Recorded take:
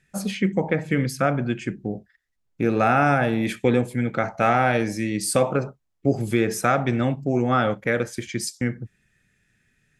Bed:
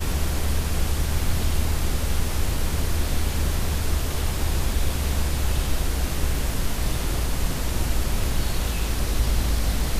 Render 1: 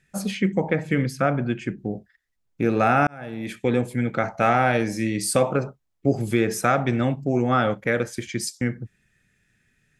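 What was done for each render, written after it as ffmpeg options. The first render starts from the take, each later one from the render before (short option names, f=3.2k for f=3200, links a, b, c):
-filter_complex "[0:a]asettb=1/sr,asplit=3[a][b][c];[a]atrim=end=1.024[d];[b]atrim=start=1.02:end=1.78,asetpts=PTS-STARTPTS,afade=t=in:d=0.004:c=qsin,afade=t=out:st=0.756:d=0.004:c=qsin,highshelf=f=5.1k:g=-7[e];[c]atrim=start=1.776[f];[d][e]acrossfade=d=0.004:c1=hsin:c2=qsin[g];[g][f]acrossfade=d=0.004:c1=qsin:c2=hsin,asettb=1/sr,asplit=3[h][i][j];[h]atrim=end=4.884[k];[i]atrim=start=4.88:end=5.3,asetpts=PTS-STARTPTS,afade=t=in:d=0.004:c=qsin,afade=t=out:st=0.416:d=0.004:c=qsin,asplit=2[l][m];[m]adelay=45,volume=-11.5dB[n];[l][n]amix=inputs=2:normalize=0,atrim=end_sample=18522[o];[j]atrim=start=5.296[p];[k][o]acrossfade=d=0.004:c1=hsin:c2=qsin[q];[q][p]acrossfade=d=0.004:c1=qsin:c2=hsin,asplit=2[r][s];[r]atrim=end=3.07,asetpts=PTS-STARTPTS,afade=t=out:st=3.066:d=0.004:c=hsin[t];[s]atrim=start=3.07,asetpts=PTS-STARTPTS,afade=t=in:d=0.84[u];[t][u]concat=n=2:v=0:a=1"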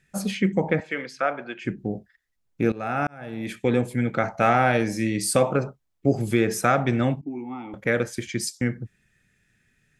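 -filter_complex "[0:a]asettb=1/sr,asplit=3[a][b][c];[a]atrim=end=0.804[d];[b]atrim=start=0.8:end=1.65,asetpts=PTS-STARTPTS,afade=t=in:d=0.004:c=qsin,afade=t=out:st=0.846:d=0.004:c=qsin,highpass=560,lowpass=5.2k[e];[c]atrim=start=1.646[f];[d][e]acrossfade=d=0.004:c1=hsin:c2=qsin[g];[g][f]acrossfade=d=0.004:c1=qsin:c2=hsin,asettb=1/sr,asplit=3[h][i][j];[h]atrim=end=7.214[k];[i]atrim=start=7.21:end=7.74,asetpts=PTS-STARTPTS,afade=t=in:d=0.004:c=qsin,afade=t=out:st=0.526:d=0.004:c=qsin,asplit=3[l][m][n];[l]bandpass=f=300:t=q:w=8,volume=0dB[o];[m]bandpass=f=870:t=q:w=8,volume=-6dB[p];[n]bandpass=f=2.24k:t=q:w=8,volume=-9dB[q];[o][p][q]amix=inputs=3:normalize=0[r];[j]atrim=start=7.736[s];[k][r]acrossfade=d=0.004:c1=hsin:c2=qsin[t];[t][s]acrossfade=d=0.004:c1=qsin:c2=hsin,asplit=2[u][v];[u]atrim=end=2.72,asetpts=PTS-STARTPTS,afade=t=out:st=2.716:d=0.004:c=hsin:silence=0.11885[w];[v]atrim=start=2.72,asetpts=PTS-STARTPTS,afade=t=in:d=0.66:silence=0.11885[x];[w][x]concat=n=2:v=0:a=1"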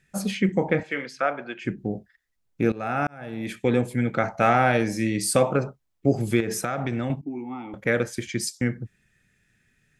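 -filter_complex "[0:a]asettb=1/sr,asplit=3[a][b][c];[a]atrim=end=0.464[d];[b]atrim=start=0.46:end=1.08,asetpts=PTS-STARTPTS,afade=t=in:d=0.004:c=qsin,afade=t=out:st=0.616:d=0.004:c=qsin,asplit=2[e][f];[f]adelay=28,volume=-10.5dB[g];[e][g]amix=inputs=2:normalize=0,atrim=end_sample=27342[h];[c]atrim=start=1.076[i];[d][h]acrossfade=d=0.004:c1=hsin:c2=qsin[j];[j][i]acrossfade=d=0.004:c1=qsin:c2=hsin,asettb=1/sr,asplit=3[k][l][m];[k]atrim=end=6.404[n];[l]atrim=start=6.4:end=7.1,asetpts=PTS-STARTPTS,afade=t=in:d=0.004:c=qsin,afade=t=out:st=0.696:d=0.004:c=qsin,acompressor=threshold=-22dB:ratio=12:attack=3.2:release=140:knee=1:detection=peak[o];[m]atrim=start=7.096[p];[n][o]acrossfade=d=0.004:c1=hsin:c2=qsin[q];[q][p]acrossfade=d=0.004:c1=qsin:c2=hsin"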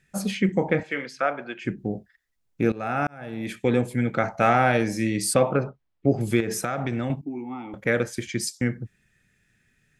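-filter_complex "[0:a]asettb=1/sr,asplit=3[a][b][c];[a]atrim=end=5.344[d];[b]atrim=start=5.34:end=6.21,asetpts=PTS-STARTPTS,afade=t=in:d=0.004:c=qsin,afade=t=out:st=0.866:d=0.004:c=qsin,lowpass=3.5k[e];[c]atrim=start=6.206[f];[d][e]acrossfade=d=0.004:c1=hsin:c2=qsin[g];[g][f]acrossfade=d=0.004:c1=qsin:c2=hsin"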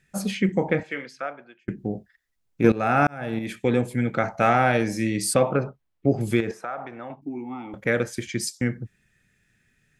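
-filter_complex "[0:a]asettb=1/sr,asplit=3[a][b][c];[a]atrim=end=2.644[d];[b]atrim=start=2.64:end=3.39,asetpts=PTS-STARTPTS,afade=t=in:d=0.004:c=qsin,afade=t=out:st=0.746:d=0.004:c=qsin,acontrast=55[e];[c]atrim=start=3.386[f];[d][e]acrossfade=d=0.004:c1=hsin:c2=qsin[g];[g][f]acrossfade=d=0.004:c1=qsin:c2=hsin,asettb=1/sr,asplit=3[h][i][j];[h]atrim=end=6.514[k];[i]atrim=start=6.51:end=7.22,asetpts=PTS-STARTPTS,afade=t=in:d=0.004:c=qsin,afade=t=out:st=0.706:d=0.004:c=qsin,bandpass=f=950:t=q:w=1.3[l];[j]atrim=start=7.216[m];[k][l]acrossfade=d=0.004:c1=hsin:c2=qsin[n];[n][m]acrossfade=d=0.004:c1=qsin:c2=hsin,asplit=2[o][p];[o]atrim=end=1.68,asetpts=PTS-STARTPTS,afade=t=out:st=0.71:d=0.97[q];[p]atrim=start=1.68,asetpts=PTS-STARTPTS,afade=t=in:d=0.004:c=hsin[r];[q][r]concat=n=2:v=0:a=1"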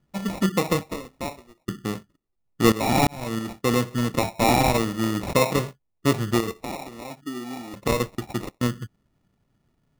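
-af "adynamicsmooth=sensitivity=5.5:basefreq=2.1k,acrusher=samples=28:mix=1:aa=0.000001"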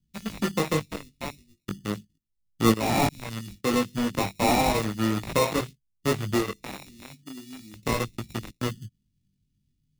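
-filter_complex "[0:a]flanger=delay=18:depth=2.6:speed=0.37,acrossover=split=260|2700[a][b][c];[b]acrusher=bits=4:mix=0:aa=0.5[d];[a][d][c]amix=inputs=3:normalize=0"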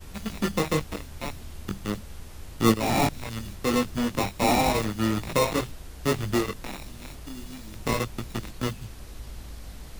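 -filter_complex "[1:a]volume=-18dB[a];[0:a][a]amix=inputs=2:normalize=0"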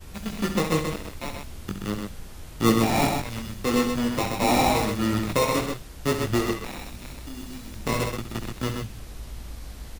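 -af "aecho=1:1:67.06|128.3:0.355|0.562"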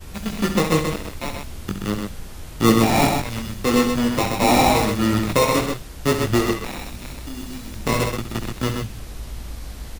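-af "volume=5dB,alimiter=limit=-2dB:level=0:latency=1"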